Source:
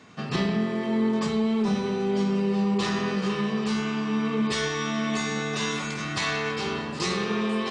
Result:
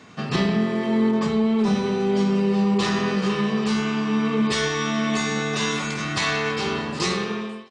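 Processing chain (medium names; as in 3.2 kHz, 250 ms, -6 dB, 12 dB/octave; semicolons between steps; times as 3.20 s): fade out at the end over 0.65 s; 1.11–1.59 s: treble shelf 3.6 kHz -7.5 dB; trim +4 dB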